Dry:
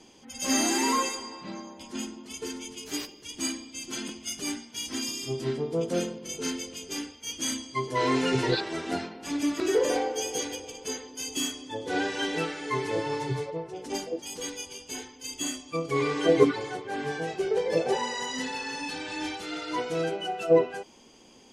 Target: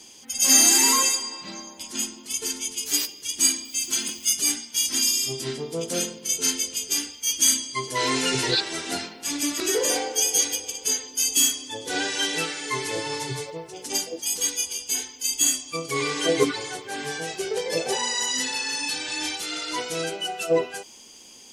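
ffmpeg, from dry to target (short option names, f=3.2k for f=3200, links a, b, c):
-filter_complex "[0:a]asettb=1/sr,asplit=3[a][b][c];[a]atrim=end=3.654[d];[b]atrim=start=3.65:end=4.32,asetpts=PTS-STARTPTS,afade=t=in:d=0.004:c=qsin,afade=t=out:st=0.666:d=0.004:c=qsin,aeval=exprs='val(0)*gte(abs(val(0)),0.0015)':c=same[e];[c]atrim=start=4.316[f];[d][e]acrossfade=d=0.004:c1=hsin:c2=qsin[g];[g][f]acrossfade=d=0.004:c1=qsin:c2=hsin,crystalizer=i=6.5:c=0,volume=-2.5dB"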